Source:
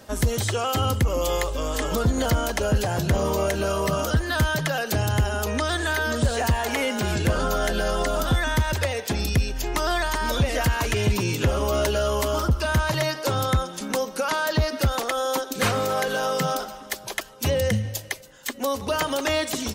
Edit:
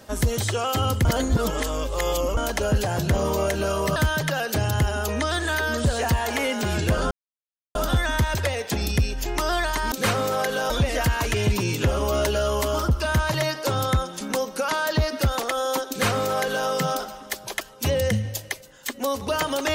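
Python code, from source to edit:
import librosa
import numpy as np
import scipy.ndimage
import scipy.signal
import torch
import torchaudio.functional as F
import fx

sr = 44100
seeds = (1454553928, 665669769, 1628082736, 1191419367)

y = fx.edit(x, sr, fx.reverse_span(start_s=1.05, length_s=1.32),
    fx.cut(start_s=3.96, length_s=0.38),
    fx.silence(start_s=7.49, length_s=0.64),
    fx.duplicate(start_s=15.5, length_s=0.78, to_s=10.3), tone=tone)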